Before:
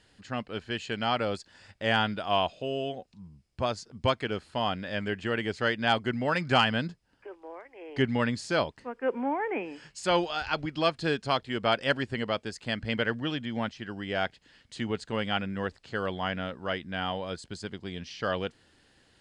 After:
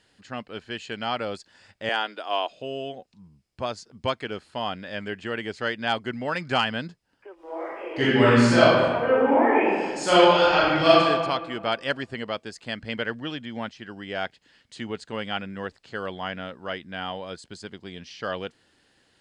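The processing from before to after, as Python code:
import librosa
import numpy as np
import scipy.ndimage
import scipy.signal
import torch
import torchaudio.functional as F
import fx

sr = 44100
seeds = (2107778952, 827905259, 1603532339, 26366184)

y = fx.steep_highpass(x, sr, hz=280.0, slope=36, at=(1.89, 2.5))
y = fx.reverb_throw(y, sr, start_s=7.34, length_s=3.66, rt60_s=1.6, drr_db=-11.0)
y = fx.low_shelf(y, sr, hz=110.0, db=-9.0)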